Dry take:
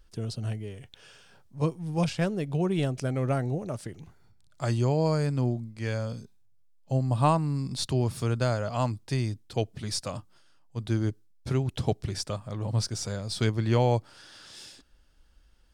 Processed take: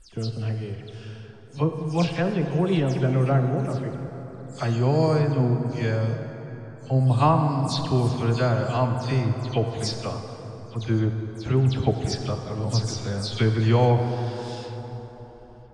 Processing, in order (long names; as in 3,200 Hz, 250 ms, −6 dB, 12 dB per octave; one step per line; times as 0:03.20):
every frequency bin delayed by itself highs early, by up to 117 ms
low-pass filter 5,900 Hz 12 dB per octave
dense smooth reverb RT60 4.5 s, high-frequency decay 0.45×, DRR 5 dB
level +4 dB